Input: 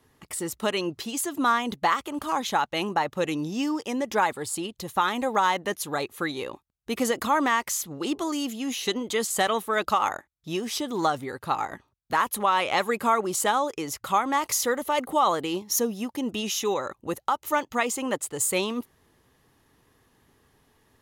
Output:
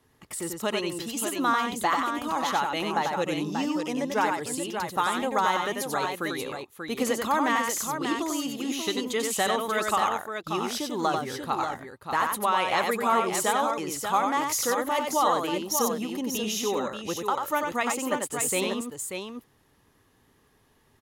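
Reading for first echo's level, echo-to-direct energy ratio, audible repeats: −4.5 dB, −2.5 dB, 2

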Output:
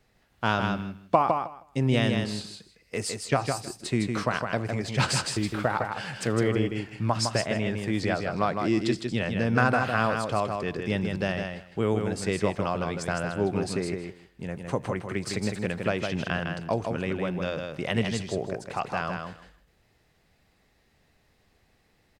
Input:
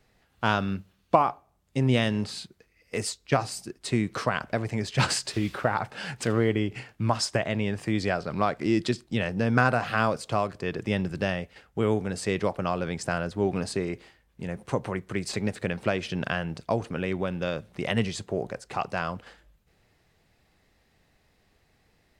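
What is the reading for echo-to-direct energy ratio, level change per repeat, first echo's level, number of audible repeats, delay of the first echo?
−5.0 dB, −16.0 dB, −5.0 dB, 2, 158 ms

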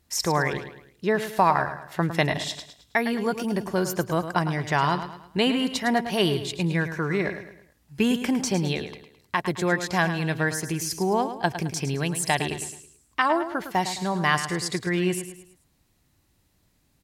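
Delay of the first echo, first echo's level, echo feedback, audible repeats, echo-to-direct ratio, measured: 107 ms, −10.5 dB, 41%, 4, −9.5 dB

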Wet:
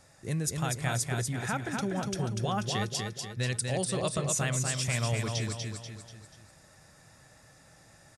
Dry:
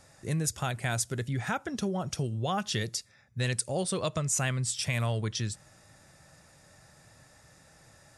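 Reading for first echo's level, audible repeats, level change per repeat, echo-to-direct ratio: −4.0 dB, 4, −6.5 dB, −3.0 dB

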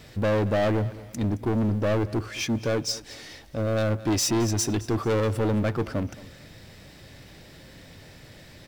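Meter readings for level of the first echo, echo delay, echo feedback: −18.5 dB, 220 ms, 36%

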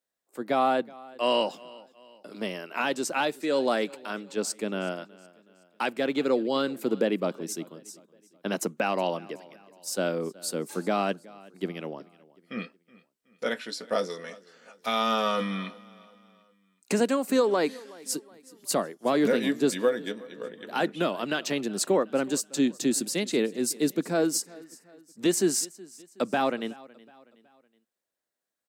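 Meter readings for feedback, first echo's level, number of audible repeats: 44%, −22.0 dB, 2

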